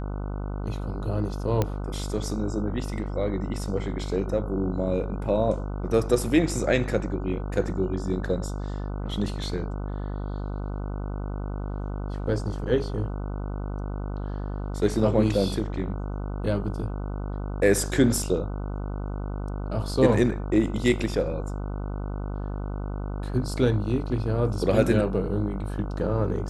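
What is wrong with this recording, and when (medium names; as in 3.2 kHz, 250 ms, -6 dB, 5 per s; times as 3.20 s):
buzz 50 Hz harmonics 30 -31 dBFS
1.62 s: pop -11 dBFS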